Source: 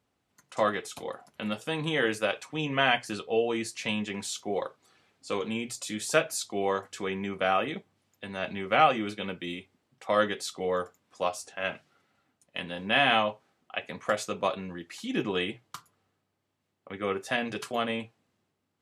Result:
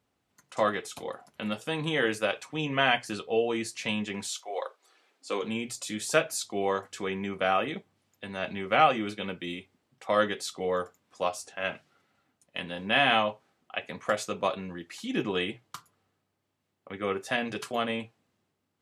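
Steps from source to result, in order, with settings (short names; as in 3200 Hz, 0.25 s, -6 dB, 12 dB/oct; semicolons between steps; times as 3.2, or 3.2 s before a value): 4.27–5.41 HPF 680 Hz -> 210 Hz 24 dB/oct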